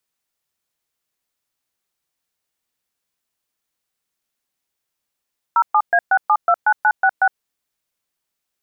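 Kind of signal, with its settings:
touch tones "07A6729966", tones 62 ms, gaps 122 ms, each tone −13.5 dBFS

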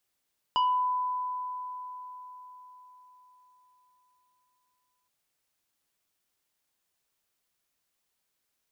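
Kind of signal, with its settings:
two-operator FM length 4.52 s, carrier 1,000 Hz, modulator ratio 1.94, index 0.97, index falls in 0.39 s exponential, decay 4.69 s, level −21 dB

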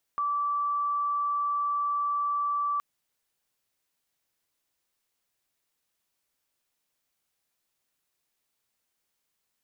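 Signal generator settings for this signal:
tone sine 1,160 Hz −25 dBFS 2.62 s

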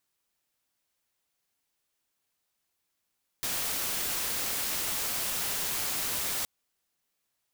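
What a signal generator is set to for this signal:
noise white, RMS −31.5 dBFS 3.02 s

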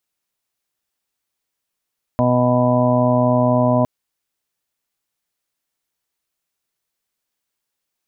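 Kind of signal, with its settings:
steady harmonic partials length 1.66 s, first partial 124 Hz, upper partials 1.5/−15/−9/2/−8/−12/−4 dB, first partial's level −19 dB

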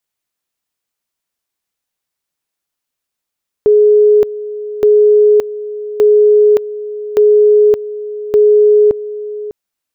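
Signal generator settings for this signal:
tone at two levels in turn 420 Hz −4.5 dBFS, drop 15.5 dB, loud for 0.57 s, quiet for 0.60 s, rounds 5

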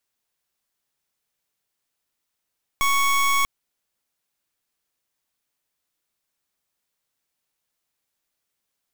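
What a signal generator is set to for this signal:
pulse wave 1,110 Hz, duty 24% −19.5 dBFS 0.64 s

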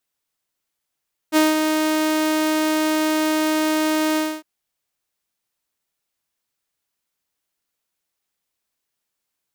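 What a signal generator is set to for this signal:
note with an ADSR envelope saw 311 Hz, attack 44 ms, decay 182 ms, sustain −5.5 dB, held 2.85 s, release 256 ms −9.5 dBFS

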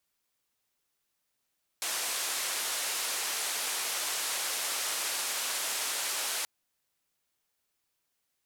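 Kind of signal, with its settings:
band-limited noise 510–11,000 Hz, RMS −33 dBFS 4.63 s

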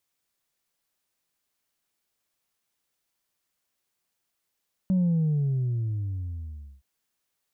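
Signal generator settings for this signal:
bass drop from 190 Hz, over 1.92 s, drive 1 dB, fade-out 1.85 s, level −20 dB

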